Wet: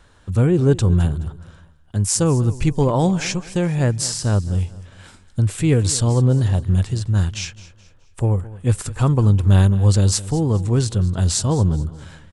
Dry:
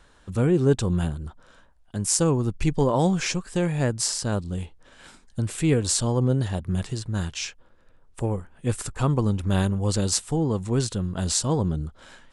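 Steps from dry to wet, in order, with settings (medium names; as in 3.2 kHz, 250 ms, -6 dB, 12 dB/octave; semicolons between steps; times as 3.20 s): peaking EQ 96 Hz +9.5 dB 0.86 oct; feedback delay 212 ms, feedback 37%, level -18 dB; trim +2.5 dB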